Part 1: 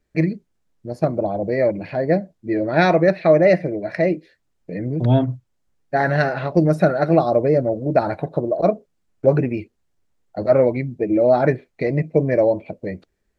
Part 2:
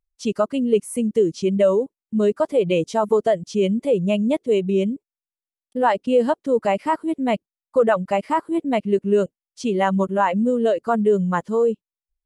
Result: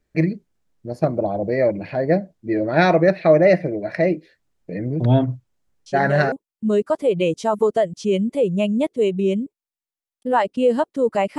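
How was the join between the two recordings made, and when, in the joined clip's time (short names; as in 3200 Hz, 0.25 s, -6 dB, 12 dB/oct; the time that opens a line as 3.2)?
part 1
5.86 add part 2 from 1.36 s 0.46 s -8.5 dB
6.32 switch to part 2 from 1.82 s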